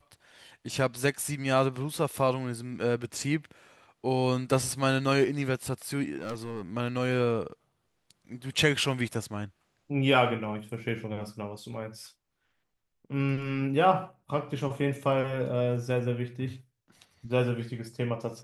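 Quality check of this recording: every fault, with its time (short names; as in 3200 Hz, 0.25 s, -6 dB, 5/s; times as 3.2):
6.17–6.62 clipped -31 dBFS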